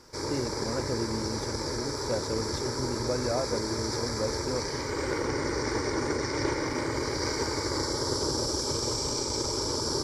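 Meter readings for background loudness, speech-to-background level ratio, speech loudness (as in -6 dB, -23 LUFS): -30.5 LUFS, -4.5 dB, -35.0 LUFS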